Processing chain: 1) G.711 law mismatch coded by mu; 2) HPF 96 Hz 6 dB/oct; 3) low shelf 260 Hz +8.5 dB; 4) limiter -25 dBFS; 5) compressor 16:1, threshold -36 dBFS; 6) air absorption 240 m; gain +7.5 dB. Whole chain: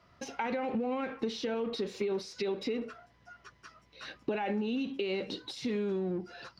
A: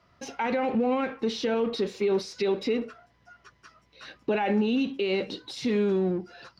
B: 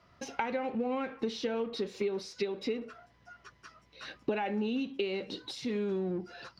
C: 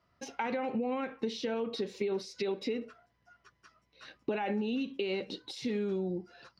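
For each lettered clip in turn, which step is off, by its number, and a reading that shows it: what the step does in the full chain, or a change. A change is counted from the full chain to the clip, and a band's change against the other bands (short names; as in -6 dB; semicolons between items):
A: 5, mean gain reduction 4.5 dB; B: 4, mean gain reduction 2.5 dB; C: 1, distortion -21 dB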